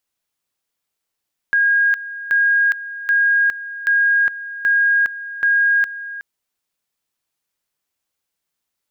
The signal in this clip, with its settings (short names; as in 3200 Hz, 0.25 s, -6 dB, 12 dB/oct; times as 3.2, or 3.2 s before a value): two-level tone 1630 Hz -12 dBFS, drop 15 dB, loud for 0.41 s, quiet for 0.37 s, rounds 6